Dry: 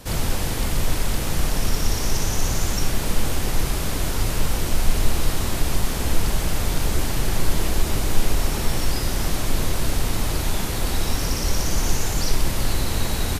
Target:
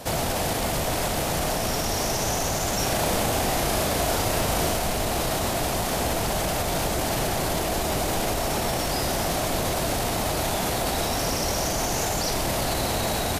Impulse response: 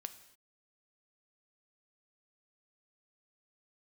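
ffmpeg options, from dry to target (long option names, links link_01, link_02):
-filter_complex "[0:a]highpass=frequency=130:poles=1,equalizer=frequency=680:width_type=o:width=0.64:gain=10,alimiter=limit=-19.5dB:level=0:latency=1:release=21,acontrast=86,asettb=1/sr,asplit=3[link_01][link_02][link_03];[link_01]atrim=end=2.754[link_04];[link_02]atrim=start=2.75:end=4.77,asetpts=PTS-STARTPTS,afade=type=in:duration=0.004:curve=qsin,afade=type=out:start_time=2.016:duration=0.004:curve=qsin,asplit=2[link_05][link_06];[link_06]adelay=37,volume=-3.5dB[link_07];[link_05][link_07]amix=inputs=2:normalize=0,atrim=end_sample=89082[link_08];[link_03]atrim=start=4.766[link_09];[link_04][link_08]acrossfade=duration=0.004:curve1=hsin:curve2=qsin[link_10];[link_10][link_09]acrossfade=duration=0.004:curve1=qsin:curve2=hsin,volume=-4dB"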